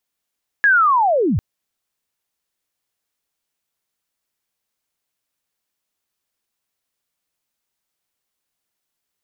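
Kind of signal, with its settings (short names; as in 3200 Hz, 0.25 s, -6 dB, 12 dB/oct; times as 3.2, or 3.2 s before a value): chirp linear 1700 Hz -> 67 Hz -9.5 dBFS -> -15 dBFS 0.75 s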